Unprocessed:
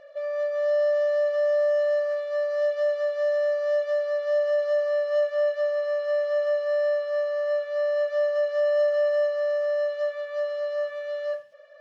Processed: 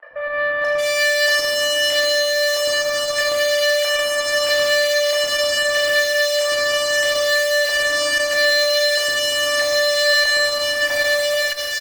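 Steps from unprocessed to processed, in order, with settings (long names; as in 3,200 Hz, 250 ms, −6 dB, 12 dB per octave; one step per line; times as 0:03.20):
Butterworth low-pass 4,100 Hz 96 dB per octave
low-shelf EQ 490 Hz −8.5 dB
in parallel at −3 dB: brickwall limiter −28.5 dBFS, peak gain reduction 9.5 dB
on the sum: auto-filter band-pass square 0.78 Hz 740–2,200 Hz
fuzz pedal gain 49 dB, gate −57 dBFS
three-band delay without the direct sound mids, lows, highs 110/620 ms, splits 470/1,600 Hz
feedback delay network reverb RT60 2.2 s, low-frequency decay 0.75×, high-frequency decay 0.65×, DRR −4 dB
saturating transformer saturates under 1,300 Hz
level −5 dB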